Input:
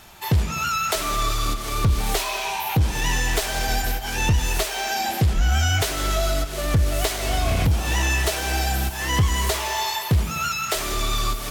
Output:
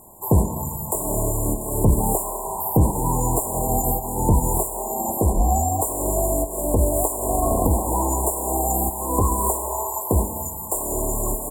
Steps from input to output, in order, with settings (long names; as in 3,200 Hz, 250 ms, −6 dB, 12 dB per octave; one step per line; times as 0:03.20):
ceiling on every frequency bin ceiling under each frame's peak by 13 dB
linear-phase brick-wall band-stop 1,100–7,000 Hz
parametric band 3,200 Hz −14.5 dB 0.65 octaves, from 0:05.17 140 Hz
single-tap delay 169 ms −21.5 dB
level +3.5 dB